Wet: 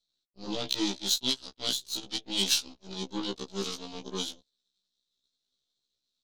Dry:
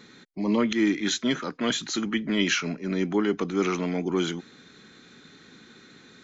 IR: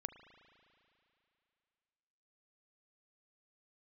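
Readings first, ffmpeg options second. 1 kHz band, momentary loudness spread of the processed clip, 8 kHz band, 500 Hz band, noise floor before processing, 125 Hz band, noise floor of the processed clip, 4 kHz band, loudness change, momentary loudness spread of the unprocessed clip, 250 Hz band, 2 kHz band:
−9.0 dB, 12 LU, can't be measured, −11.5 dB, −53 dBFS, −12.0 dB, −84 dBFS, +2.5 dB, −4.5 dB, 6 LU, −12.5 dB, −13.0 dB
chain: -af "aeval=exprs='0.316*(cos(1*acos(clip(val(0)/0.316,-1,1)))-cos(1*PI/2))+0.00251*(cos(6*acos(clip(val(0)/0.316,-1,1)))-cos(6*PI/2))+0.0447*(cos(7*acos(clip(val(0)/0.316,-1,1)))-cos(7*PI/2))+0.0141*(cos(8*acos(clip(val(0)/0.316,-1,1)))-cos(8*PI/2))':channel_layout=same,highshelf=frequency=2800:width_type=q:width=3:gain=11.5,afftfilt=real='re*1.73*eq(mod(b,3),0)':imag='im*1.73*eq(mod(b,3),0)':win_size=2048:overlap=0.75,volume=-6.5dB"

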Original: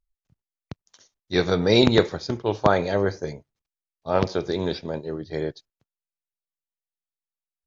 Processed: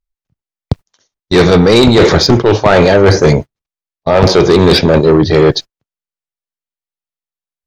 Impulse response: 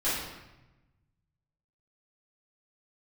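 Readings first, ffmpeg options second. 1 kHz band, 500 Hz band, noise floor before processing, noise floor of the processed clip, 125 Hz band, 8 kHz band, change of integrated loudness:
+13.5 dB, +15.0 dB, below −85 dBFS, below −85 dBFS, +17.0 dB, can't be measured, +14.5 dB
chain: -af "agate=range=-32dB:threshold=-44dB:ratio=16:detection=peak,highshelf=frequency=6100:gain=-6.5,areverse,acompressor=threshold=-25dB:ratio=16,areverse,asoftclip=type=tanh:threshold=-29.5dB,alimiter=level_in=33.5dB:limit=-1dB:release=50:level=0:latency=1,volume=-1dB"

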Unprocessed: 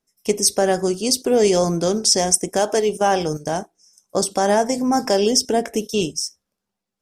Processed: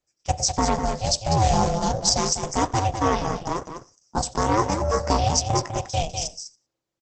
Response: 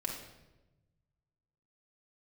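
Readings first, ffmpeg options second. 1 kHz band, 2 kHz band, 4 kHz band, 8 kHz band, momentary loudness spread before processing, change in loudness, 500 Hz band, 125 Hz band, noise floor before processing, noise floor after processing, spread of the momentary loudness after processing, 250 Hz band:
+0.5 dB, −4.5 dB, −4.0 dB, −4.5 dB, 8 LU, −4.0 dB, −8.5 dB, +5.5 dB, −82 dBFS, −83 dBFS, 10 LU, −5.5 dB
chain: -filter_complex "[0:a]asplit=2[link_01][link_02];[link_02]aecho=0:1:200:0.422[link_03];[link_01][link_03]amix=inputs=2:normalize=0,aeval=exprs='val(0)*sin(2*PI*330*n/s)':channel_layout=same,asplit=2[link_04][link_05];[link_05]aecho=0:1:95|190:0.0708|0.012[link_06];[link_04][link_06]amix=inputs=2:normalize=0,aeval=exprs='0.75*(cos(1*acos(clip(val(0)/0.75,-1,1)))-cos(1*PI/2))+0.0119*(cos(7*acos(clip(val(0)/0.75,-1,1)))-cos(7*PI/2))':channel_layout=same" -ar 48000 -c:a libopus -b:a 10k

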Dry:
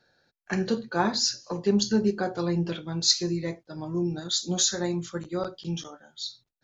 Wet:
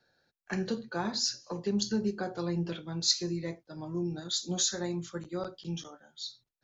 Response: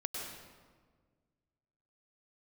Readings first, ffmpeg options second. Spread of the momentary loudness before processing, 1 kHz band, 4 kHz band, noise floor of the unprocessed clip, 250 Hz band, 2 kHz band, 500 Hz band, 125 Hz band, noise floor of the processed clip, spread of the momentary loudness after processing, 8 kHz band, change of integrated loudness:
13 LU, −8.0 dB, −5.0 dB, −78 dBFS, −6.0 dB, −6.5 dB, −7.0 dB, −5.5 dB, −83 dBFS, 12 LU, can't be measured, −5.5 dB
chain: -filter_complex "[0:a]acrossover=split=210|3000[link_01][link_02][link_03];[link_02]acompressor=threshold=-25dB:ratio=6[link_04];[link_01][link_04][link_03]amix=inputs=3:normalize=0,volume=-5dB"

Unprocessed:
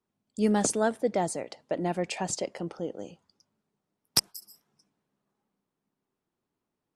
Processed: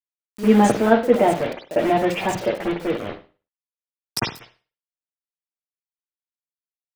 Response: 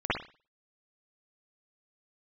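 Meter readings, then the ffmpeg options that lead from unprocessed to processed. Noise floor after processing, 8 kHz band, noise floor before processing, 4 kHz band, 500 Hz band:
below −85 dBFS, −3.5 dB, below −85 dBFS, +1.5 dB, +10.5 dB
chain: -filter_complex "[0:a]acrusher=bits=5:mix=0:aa=0.000001[link_01];[1:a]atrim=start_sample=2205[link_02];[link_01][link_02]afir=irnorm=-1:irlink=0,volume=-1dB"

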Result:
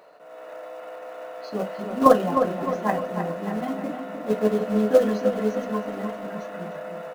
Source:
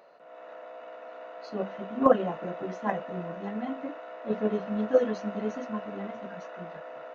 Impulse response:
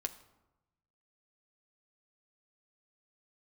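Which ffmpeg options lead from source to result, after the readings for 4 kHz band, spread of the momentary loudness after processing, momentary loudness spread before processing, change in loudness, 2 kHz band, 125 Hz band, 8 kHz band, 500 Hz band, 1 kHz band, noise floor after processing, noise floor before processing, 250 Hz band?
+8.0 dB, 19 LU, 19 LU, +6.5 dB, +5.5 dB, +6.5 dB, can't be measured, +6.0 dB, +7.5 dB, −42 dBFS, −47 dBFS, +6.0 dB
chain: -filter_complex "[0:a]asplit=2[link_01][link_02];[link_02]acrusher=bits=3:mode=log:mix=0:aa=0.000001,volume=-5.5dB[link_03];[link_01][link_03]amix=inputs=2:normalize=0,asplit=2[link_04][link_05];[link_05]adelay=308,lowpass=frequency=3500:poles=1,volume=-7dB,asplit=2[link_06][link_07];[link_07]adelay=308,lowpass=frequency=3500:poles=1,volume=0.48,asplit=2[link_08][link_09];[link_09]adelay=308,lowpass=frequency=3500:poles=1,volume=0.48,asplit=2[link_10][link_11];[link_11]adelay=308,lowpass=frequency=3500:poles=1,volume=0.48,asplit=2[link_12][link_13];[link_13]adelay=308,lowpass=frequency=3500:poles=1,volume=0.48,asplit=2[link_14][link_15];[link_15]adelay=308,lowpass=frequency=3500:poles=1,volume=0.48[link_16];[link_04][link_06][link_08][link_10][link_12][link_14][link_16]amix=inputs=7:normalize=0[link_17];[1:a]atrim=start_sample=2205,atrim=end_sample=3087[link_18];[link_17][link_18]afir=irnorm=-1:irlink=0,volume=1.5dB"

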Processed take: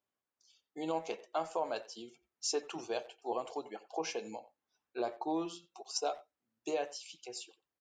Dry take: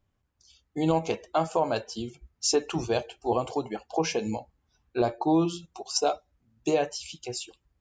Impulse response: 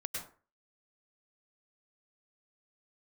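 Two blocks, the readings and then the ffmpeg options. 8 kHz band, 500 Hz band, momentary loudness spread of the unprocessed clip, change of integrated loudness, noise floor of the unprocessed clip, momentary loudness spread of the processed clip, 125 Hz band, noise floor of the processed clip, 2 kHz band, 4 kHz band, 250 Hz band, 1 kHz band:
−9.0 dB, −10.0 dB, 12 LU, −10.5 dB, −76 dBFS, 12 LU, −23.5 dB, below −85 dBFS, −9.0 dB, −9.0 dB, −13.5 dB, −9.0 dB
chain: -filter_complex "[0:a]highpass=350,asplit=2[link_01][link_02];[link_02]adelay=90,highpass=300,lowpass=3400,asoftclip=type=hard:threshold=-22.5dB,volume=-17dB[link_03];[link_01][link_03]amix=inputs=2:normalize=0,volume=-9dB"

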